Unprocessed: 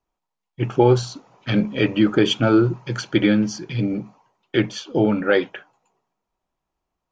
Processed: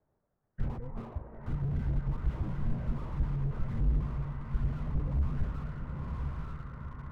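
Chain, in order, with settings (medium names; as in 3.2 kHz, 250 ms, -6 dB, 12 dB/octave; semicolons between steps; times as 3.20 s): de-hum 58.54 Hz, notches 5; compressor with a negative ratio -23 dBFS, ratio -0.5; added noise brown -67 dBFS; distance through air 400 m; echo that smears into a reverb 951 ms, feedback 54%, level -9 dB; reverberation RT60 2.4 s, pre-delay 100 ms, DRR 17.5 dB; mistuned SSB -350 Hz 210–2100 Hz; slew-rate limiter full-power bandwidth 4.3 Hz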